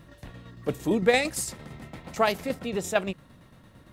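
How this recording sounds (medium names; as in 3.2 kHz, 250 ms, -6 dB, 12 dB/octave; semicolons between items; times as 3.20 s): a quantiser's noise floor 12-bit, dither none; tremolo saw down 8.8 Hz, depth 55%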